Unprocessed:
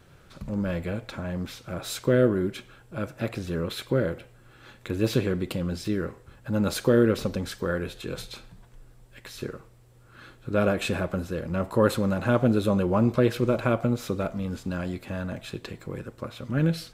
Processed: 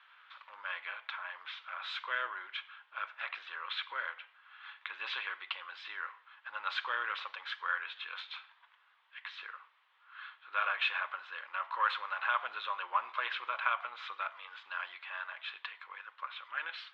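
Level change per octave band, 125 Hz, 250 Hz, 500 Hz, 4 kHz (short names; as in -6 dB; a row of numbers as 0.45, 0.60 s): under -40 dB, under -40 dB, -27.0 dB, -2.0 dB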